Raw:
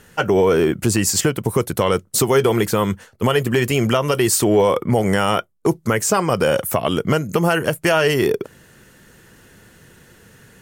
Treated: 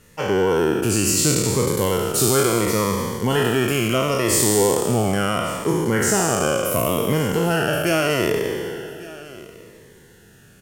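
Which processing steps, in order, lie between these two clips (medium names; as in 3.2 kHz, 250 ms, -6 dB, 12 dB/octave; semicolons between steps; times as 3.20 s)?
spectral sustain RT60 2.22 s; on a send: delay 1148 ms -19.5 dB; on the sum: Shepard-style phaser falling 0.73 Hz; trim -5 dB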